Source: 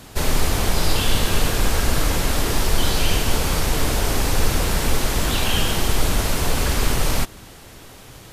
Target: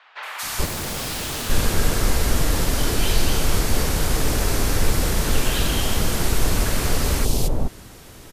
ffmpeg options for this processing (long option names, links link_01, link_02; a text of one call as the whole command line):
ffmpeg -i in.wav -filter_complex "[0:a]acrossover=split=870|3000[link_01][link_02][link_03];[link_03]adelay=230[link_04];[link_01]adelay=430[link_05];[link_05][link_02][link_04]amix=inputs=3:normalize=0,asettb=1/sr,asplit=3[link_06][link_07][link_08];[link_06]atrim=end=0.654[link_09];[link_07]atrim=start=0.65:end=1.5,asetpts=PTS-STARTPTS,afade=type=in:duration=0.004:curve=qsin,afade=type=out:start_time=0.846:duration=0.004:curve=qsin,aeval=exprs='0.0708*(abs(mod(val(0)/0.0708+3,4)-2)-1)':channel_layout=same[link_10];[link_08]atrim=start=1.496[link_11];[link_09][link_10]acrossfade=duration=0.004:curve1=hsin:curve2=qsin[link_12];[link_12][link_11]acrossfade=duration=0.004:curve1=qsin:curve2=hsin" out.wav